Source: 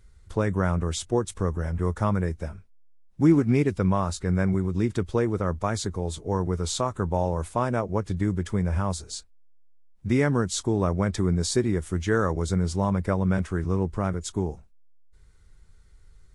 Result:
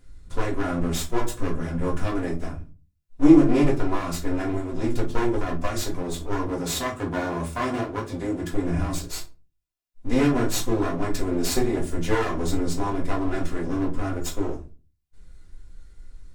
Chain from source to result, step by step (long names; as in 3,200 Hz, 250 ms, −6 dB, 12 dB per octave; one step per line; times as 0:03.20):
lower of the sound and its delayed copy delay 2.9 ms
0:06.45–0:08.52: high-pass filter 58 Hz
convolution reverb RT60 0.35 s, pre-delay 4 ms, DRR −2 dB